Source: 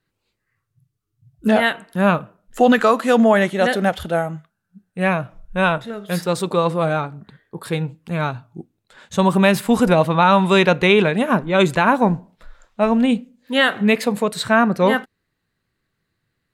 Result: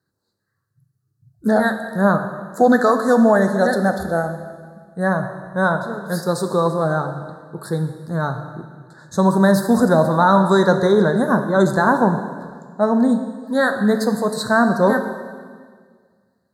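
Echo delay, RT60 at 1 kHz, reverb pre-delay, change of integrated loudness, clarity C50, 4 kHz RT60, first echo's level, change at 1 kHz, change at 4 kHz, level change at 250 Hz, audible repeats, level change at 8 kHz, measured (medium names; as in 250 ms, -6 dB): no echo, 1.7 s, 8 ms, 0.0 dB, 8.5 dB, 1.6 s, no echo, 0.0 dB, -8.0 dB, +1.0 dB, no echo, 0.0 dB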